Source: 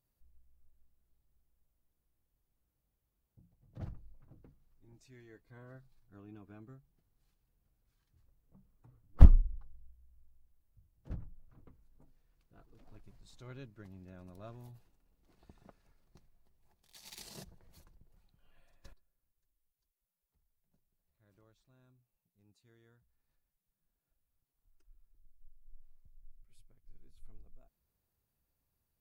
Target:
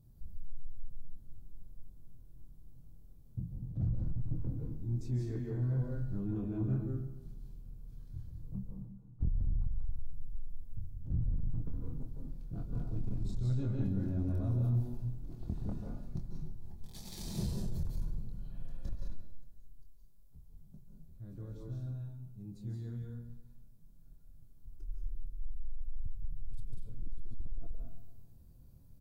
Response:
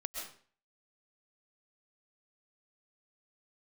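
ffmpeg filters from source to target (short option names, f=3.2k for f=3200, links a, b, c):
-filter_complex "[0:a]bandreject=f=2.8k:w=13,asplit=2[a][b];[b]adelay=25,volume=-5dB[c];[a][c]amix=inputs=2:normalize=0,areverse,acompressor=threshold=-51dB:ratio=8,areverse,tiltshelf=f=710:g=8.5[d];[1:a]atrim=start_sample=2205,asetrate=33516,aresample=44100[e];[d][e]afir=irnorm=-1:irlink=0,asoftclip=type=tanh:threshold=-35.5dB,aecho=1:1:136|272|408|544|680:0.141|0.0763|0.0412|0.0222|0.012,aeval=exprs='0.0188*sin(PI/2*1.58*val(0)/0.0188)':c=same,equalizer=f=125:t=o:w=1:g=5,equalizer=f=500:t=o:w=1:g=-6,equalizer=f=1k:t=o:w=1:g=-4,equalizer=f=2k:t=o:w=1:g=-8,volume=7dB"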